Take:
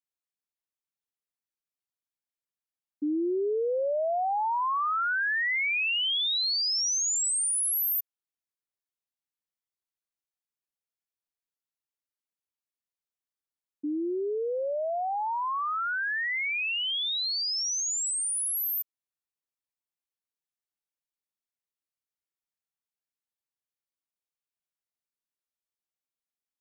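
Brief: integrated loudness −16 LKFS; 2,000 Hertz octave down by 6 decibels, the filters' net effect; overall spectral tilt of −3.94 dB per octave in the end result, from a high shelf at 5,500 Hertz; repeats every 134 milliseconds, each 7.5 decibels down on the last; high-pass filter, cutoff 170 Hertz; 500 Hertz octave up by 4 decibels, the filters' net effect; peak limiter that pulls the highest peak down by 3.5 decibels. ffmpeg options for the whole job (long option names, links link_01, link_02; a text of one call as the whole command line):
ffmpeg -i in.wav -af "highpass=170,equalizer=frequency=500:width_type=o:gain=5.5,equalizer=frequency=2000:width_type=o:gain=-7.5,highshelf=frequency=5500:gain=-4.5,alimiter=limit=-23dB:level=0:latency=1,aecho=1:1:134|268|402|536|670:0.422|0.177|0.0744|0.0312|0.0131,volume=12dB" out.wav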